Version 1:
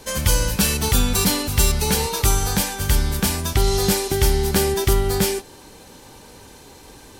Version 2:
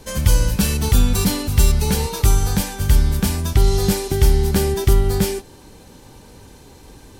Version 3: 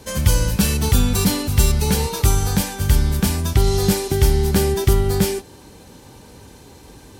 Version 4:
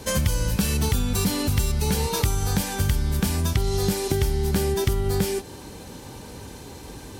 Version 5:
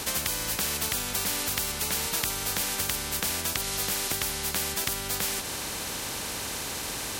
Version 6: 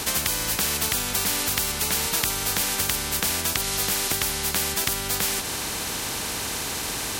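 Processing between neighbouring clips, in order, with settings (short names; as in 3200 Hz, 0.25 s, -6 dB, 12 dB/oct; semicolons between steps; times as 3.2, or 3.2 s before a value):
low shelf 290 Hz +9 dB; gain -3.5 dB
HPF 50 Hz; gain +1 dB
compressor, threshold -23 dBFS, peak gain reduction 13.5 dB; gain +3.5 dB
spectral compressor 4:1
notch 550 Hz, Q 12; gain +4.5 dB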